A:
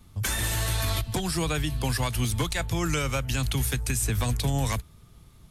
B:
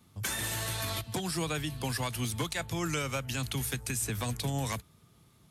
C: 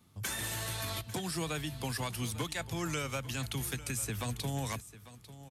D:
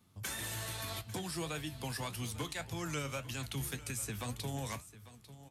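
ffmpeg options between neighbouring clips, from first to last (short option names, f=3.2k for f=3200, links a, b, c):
-af "highpass=120,volume=-4.5dB"
-af "aecho=1:1:847:0.158,volume=-3dB"
-af "flanger=delay=9.4:depth=5.1:regen=68:speed=1.8:shape=sinusoidal,volume=1dB"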